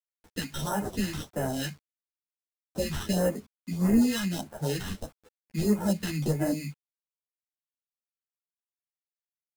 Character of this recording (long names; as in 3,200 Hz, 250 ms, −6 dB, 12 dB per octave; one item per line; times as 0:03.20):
aliases and images of a low sample rate 2,300 Hz, jitter 0%
phaser sweep stages 2, 1.6 Hz, lowest notch 510–3,700 Hz
a quantiser's noise floor 10 bits, dither none
a shimmering, thickened sound